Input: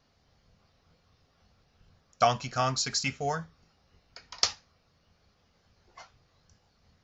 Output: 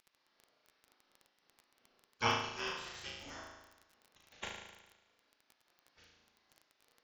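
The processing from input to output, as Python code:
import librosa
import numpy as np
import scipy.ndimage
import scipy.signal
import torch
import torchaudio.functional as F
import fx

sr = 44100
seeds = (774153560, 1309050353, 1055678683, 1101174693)

y = fx.spec_gate(x, sr, threshold_db=-15, keep='weak')
y = scipy.signal.sosfilt(scipy.signal.butter(2, 4400.0, 'lowpass', fs=sr, output='sos'), y)
y = fx.room_flutter(y, sr, wall_m=6.3, rt60_s=1.1)
y = fx.dmg_crackle(y, sr, seeds[0], per_s=18.0, level_db=-39.0)
y = fx.upward_expand(y, sr, threshold_db=-40.0, expansion=1.5)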